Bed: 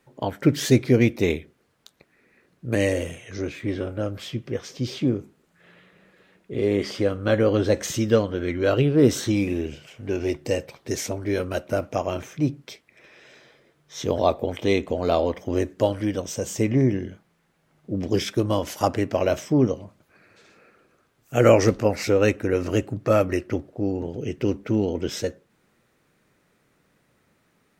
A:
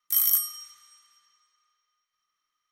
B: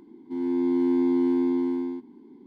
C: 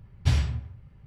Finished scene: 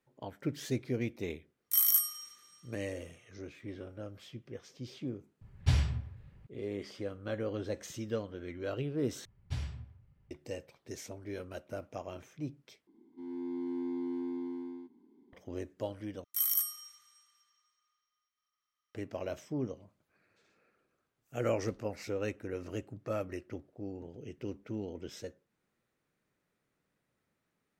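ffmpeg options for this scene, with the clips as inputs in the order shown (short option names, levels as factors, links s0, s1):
-filter_complex "[1:a]asplit=2[s0][s1];[3:a]asplit=2[s2][s3];[0:a]volume=0.15,asplit=4[s4][s5][s6][s7];[s4]atrim=end=9.254[s8];[s3]atrim=end=1.06,asetpts=PTS-STARTPTS,volume=0.188[s9];[s5]atrim=start=10.306:end=12.874[s10];[2:a]atrim=end=2.46,asetpts=PTS-STARTPTS,volume=0.2[s11];[s6]atrim=start=15.326:end=16.244[s12];[s1]atrim=end=2.71,asetpts=PTS-STARTPTS,volume=0.398[s13];[s7]atrim=start=18.946[s14];[s0]atrim=end=2.71,asetpts=PTS-STARTPTS,volume=0.631,afade=t=in:d=0.1,afade=t=out:st=2.61:d=0.1,adelay=1610[s15];[s2]atrim=end=1.06,asetpts=PTS-STARTPTS,volume=0.596,afade=t=in:d=0.004:c=hsin,afade=t=out:st=1.056:d=0.004:c=hsin,adelay=238581S[s16];[s8][s9]acrossfade=d=0.004:c1=hsin:c2=hsin[s17];[s17][s10]acrossfade=d=0.004:c1=hsin:c2=hsin[s18];[s18][s11]acrossfade=d=0.004:c1=hsin:c2=hsin[s19];[s19][s12]acrossfade=d=0.004:c1=hsin:c2=hsin[s20];[s20][s13]acrossfade=d=0.004:c1=hsin:c2=hsin[s21];[s21][s14]acrossfade=d=0.004:c1=hsin:c2=hsin[s22];[s22][s15][s16]amix=inputs=3:normalize=0"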